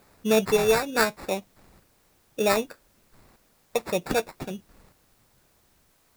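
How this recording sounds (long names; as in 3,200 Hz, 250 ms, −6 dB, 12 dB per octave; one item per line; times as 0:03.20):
aliases and images of a low sample rate 3,100 Hz, jitter 0%
chopped level 0.64 Hz, depth 65%, duty 15%
a quantiser's noise floor 12 bits, dither triangular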